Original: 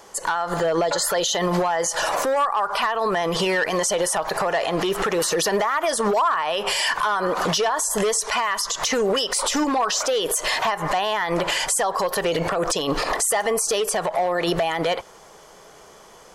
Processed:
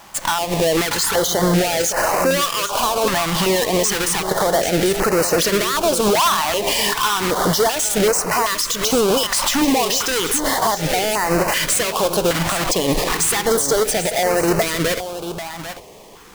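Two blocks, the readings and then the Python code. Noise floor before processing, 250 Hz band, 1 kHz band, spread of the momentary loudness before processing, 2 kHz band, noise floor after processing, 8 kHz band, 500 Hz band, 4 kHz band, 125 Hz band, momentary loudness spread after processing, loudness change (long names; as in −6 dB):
−47 dBFS, +6.5 dB, +2.0 dB, 2 LU, +3.0 dB, −33 dBFS, +5.0 dB, +4.0 dB, +4.5 dB, +7.5 dB, 3 LU, +4.5 dB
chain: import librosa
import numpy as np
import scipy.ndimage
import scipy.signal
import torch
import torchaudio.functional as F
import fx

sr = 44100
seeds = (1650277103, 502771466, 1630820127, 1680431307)

y = fx.halfwave_hold(x, sr)
y = y + 10.0 ** (-10.5 / 20.0) * np.pad(y, (int(791 * sr / 1000.0), 0))[:len(y)]
y = fx.filter_held_notch(y, sr, hz=2.6, low_hz=450.0, high_hz=3400.0)
y = F.gain(torch.from_numpy(y), 1.5).numpy()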